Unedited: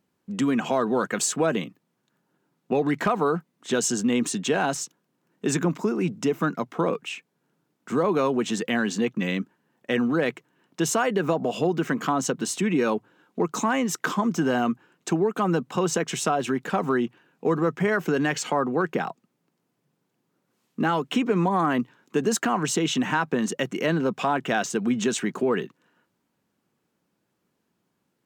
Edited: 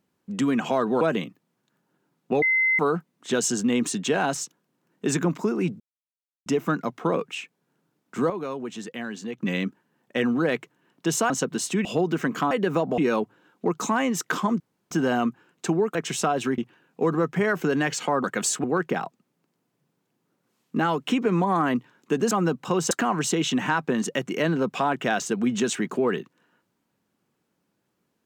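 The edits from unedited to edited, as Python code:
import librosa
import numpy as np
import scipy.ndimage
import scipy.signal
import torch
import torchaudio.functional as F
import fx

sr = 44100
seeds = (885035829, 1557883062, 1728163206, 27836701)

y = fx.edit(x, sr, fx.move(start_s=1.01, length_s=0.4, to_s=18.68),
    fx.bleep(start_s=2.82, length_s=0.37, hz=2060.0, db=-18.0),
    fx.insert_silence(at_s=6.2, length_s=0.66),
    fx.clip_gain(start_s=8.04, length_s=1.08, db=-9.0),
    fx.swap(start_s=11.04, length_s=0.47, other_s=12.17, other_length_s=0.55),
    fx.insert_room_tone(at_s=14.34, length_s=0.31),
    fx.move(start_s=15.38, length_s=0.6, to_s=22.35),
    fx.cut(start_s=16.61, length_s=0.41), tone=tone)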